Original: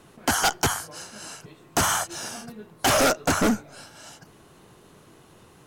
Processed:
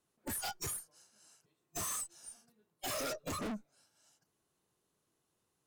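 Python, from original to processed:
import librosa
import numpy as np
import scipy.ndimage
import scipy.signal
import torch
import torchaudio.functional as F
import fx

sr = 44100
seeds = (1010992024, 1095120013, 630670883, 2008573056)

y = fx.noise_reduce_blind(x, sr, reduce_db=29)
y = fx.bass_treble(y, sr, bass_db=-2, treble_db=9)
y = fx.tube_stage(y, sr, drive_db=37.0, bias=0.35)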